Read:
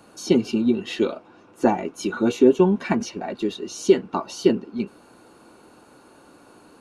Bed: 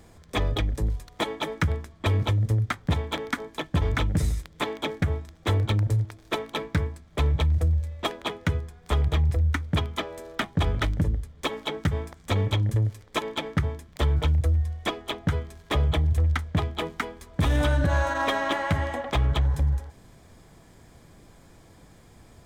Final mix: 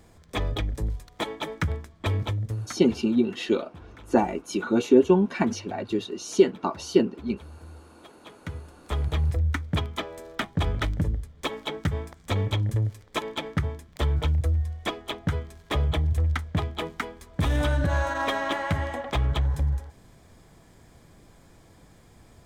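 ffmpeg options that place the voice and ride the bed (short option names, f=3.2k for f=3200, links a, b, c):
-filter_complex "[0:a]adelay=2500,volume=-2dB[a];[1:a]volume=19dB,afade=t=out:st=2.1:d=0.93:silence=0.0944061,afade=t=in:st=8.18:d=1.11:silence=0.0841395[b];[a][b]amix=inputs=2:normalize=0"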